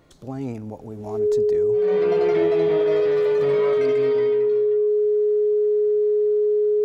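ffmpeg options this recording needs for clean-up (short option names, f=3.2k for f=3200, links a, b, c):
-af "bandreject=f=420:w=30"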